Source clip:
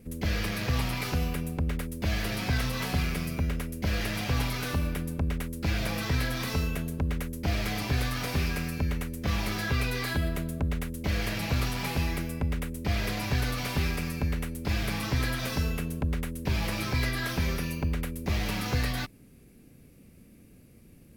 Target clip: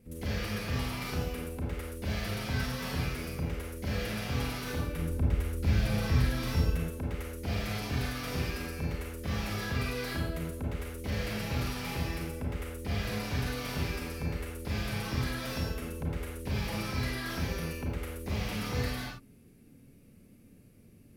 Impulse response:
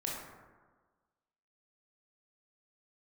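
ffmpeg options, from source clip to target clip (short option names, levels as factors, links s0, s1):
-filter_complex "[0:a]asettb=1/sr,asplit=3[s0][s1][s2];[s0]atrim=end=4.984[s3];[s1]atrim=start=4.98:end=6.75,asetpts=PTS-STARTPTS,afade=t=in:d=0.004:c=qsin,afade=t=out:st=1.766:d=0.004:c=qsin,lowshelf=f=150:g=10.5[s4];[s2]atrim=start=6.746[s5];[s3][s4]acrossfade=d=0.004:c1=hsin:c2=qsin[s6];[s6][s5]acrossfade=d=0.004:c1=qsin:c2=hsin[s7];[1:a]atrim=start_sample=2205,atrim=end_sample=4410,asetrate=31752,aresample=44100[s8];[s7][s8]afir=irnorm=-1:irlink=0,volume=0.447"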